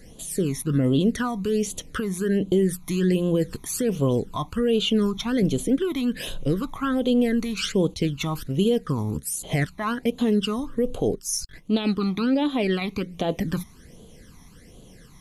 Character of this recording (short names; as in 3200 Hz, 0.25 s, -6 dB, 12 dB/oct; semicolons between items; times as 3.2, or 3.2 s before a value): phasing stages 12, 1.3 Hz, lowest notch 490–1800 Hz